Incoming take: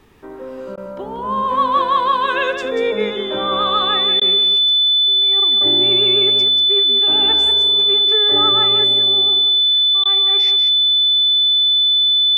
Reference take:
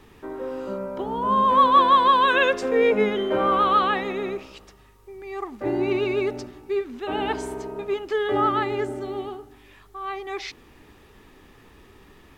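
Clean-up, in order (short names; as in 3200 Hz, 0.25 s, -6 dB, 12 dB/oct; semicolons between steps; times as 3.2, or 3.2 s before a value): notch 3500 Hz, Q 30; interpolate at 0.76/4.2/10.04, 13 ms; inverse comb 0.186 s -7.5 dB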